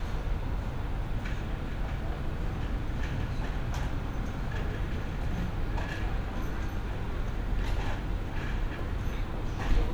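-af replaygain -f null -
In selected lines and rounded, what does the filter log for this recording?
track_gain = +21.0 dB
track_peak = 0.148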